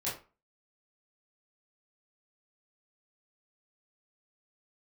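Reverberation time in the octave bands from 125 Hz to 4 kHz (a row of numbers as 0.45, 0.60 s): 0.30, 0.35, 0.35, 0.35, 0.30, 0.25 s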